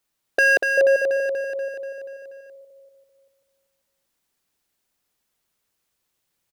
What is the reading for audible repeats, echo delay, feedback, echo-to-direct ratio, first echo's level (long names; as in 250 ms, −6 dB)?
7, 241 ms, 59%, −3.5 dB, −5.5 dB